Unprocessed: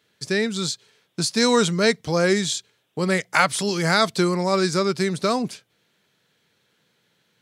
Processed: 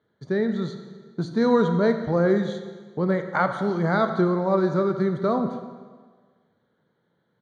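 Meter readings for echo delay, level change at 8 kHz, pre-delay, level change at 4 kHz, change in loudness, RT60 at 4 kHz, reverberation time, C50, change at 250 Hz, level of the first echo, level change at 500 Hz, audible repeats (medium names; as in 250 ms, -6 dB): 88 ms, under -25 dB, 18 ms, -17.5 dB, -2.0 dB, 1.4 s, 1.5 s, 8.5 dB, +0.5 dB, -17.0 dB, 0.0 dB, 1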